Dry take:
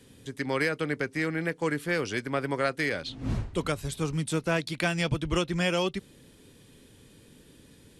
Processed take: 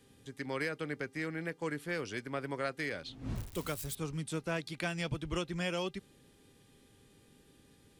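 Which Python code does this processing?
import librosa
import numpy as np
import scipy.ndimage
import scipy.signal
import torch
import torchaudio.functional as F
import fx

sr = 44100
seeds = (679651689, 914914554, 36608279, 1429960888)

y = fx.crossing_spikes(x, sr, level_db=-27.5, at=(3.36, 3.95))
y = fx.dmg_buzz(y, sr, base_hz=400.0, harmonics=34, level_db=-65.0, tilt_db=-5, odd_only=False)
y = y * 10.0 ** (-8.5 / 20.0)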